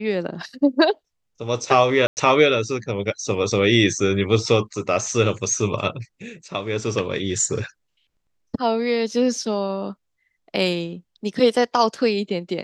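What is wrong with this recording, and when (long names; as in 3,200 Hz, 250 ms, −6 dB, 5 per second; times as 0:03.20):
0:02.07–0:02.17: drop-out 99 ms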